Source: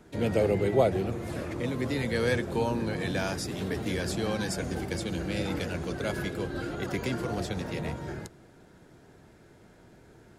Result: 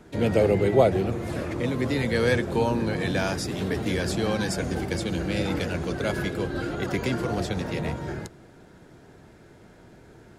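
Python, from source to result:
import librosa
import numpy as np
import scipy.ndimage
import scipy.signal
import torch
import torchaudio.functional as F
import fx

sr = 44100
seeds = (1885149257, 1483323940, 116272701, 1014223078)

y = fx.high_shelf(x, sr, hz=7800.0, db=-4.0)
y = F.gain(torch.from_numpy(y), 4.5).numpy()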